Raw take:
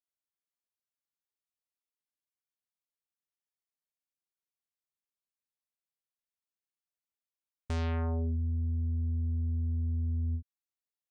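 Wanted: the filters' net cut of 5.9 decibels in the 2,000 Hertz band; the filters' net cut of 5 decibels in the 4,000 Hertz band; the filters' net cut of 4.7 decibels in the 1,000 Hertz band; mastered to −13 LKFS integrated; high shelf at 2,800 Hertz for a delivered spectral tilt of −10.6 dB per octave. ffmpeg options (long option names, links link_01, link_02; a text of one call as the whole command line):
ffmpeg -i in.wav -af "equalizer=frequency=1000:width_type=o:gain=-5.5,equalizer=frequency=2000:width_type=o:gain=-5.5,highshelf=frequency=2800:gain=4.5,equalizer=frequency=4000:width_type=o:gain=-8,volume=20dB" out.wav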